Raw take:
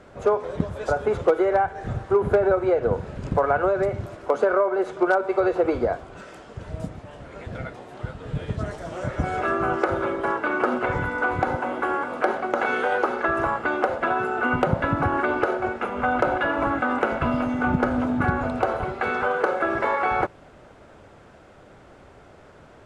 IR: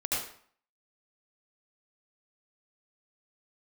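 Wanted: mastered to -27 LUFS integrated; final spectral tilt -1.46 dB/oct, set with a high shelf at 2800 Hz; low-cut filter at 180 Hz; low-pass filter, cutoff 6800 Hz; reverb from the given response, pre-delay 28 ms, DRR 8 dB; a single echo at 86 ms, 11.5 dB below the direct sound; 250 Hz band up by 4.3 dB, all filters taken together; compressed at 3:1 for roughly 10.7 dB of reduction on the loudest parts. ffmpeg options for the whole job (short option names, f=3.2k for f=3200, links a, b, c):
-filter_complex "[0:a]highpass=180,lowpass=6.8k,equalizer=f=250:t=o:g=6.5,highshelf=f=2.8k:g=3.5,acompressor=threshold=-29dB:ratio=3,aecho=1:1:86:0.266,asplit=2[a][b];[1:a]atrim=start_sample=2205,adelay=28[c];[b][c]afir=irnorm=-1:irlink=0,volume=-15.5dB[d];[a][d]amix=inputs=2:normalize=0,volume=3dB"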